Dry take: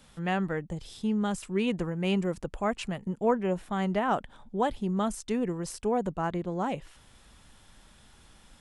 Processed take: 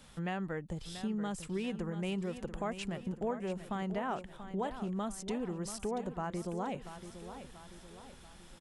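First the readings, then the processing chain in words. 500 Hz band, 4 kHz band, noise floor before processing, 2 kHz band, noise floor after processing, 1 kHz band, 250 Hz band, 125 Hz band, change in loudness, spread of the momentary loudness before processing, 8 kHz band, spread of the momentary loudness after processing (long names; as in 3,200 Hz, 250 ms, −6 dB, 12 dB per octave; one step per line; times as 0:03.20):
−8.0 dB, −6.0 dB, −58 dBFS, −7.5 dB, −55 dBFS, −8.5 dB, −7.0 dB, −6.5 dB, −8.0 dB, 6 LU, −3.5 dB, 15 LU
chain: downward compressor 3 to 1, threshold −36 dBFS, peak gain reduction 12.5 dB
repeating echo 686 ms, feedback 49%, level −11 dB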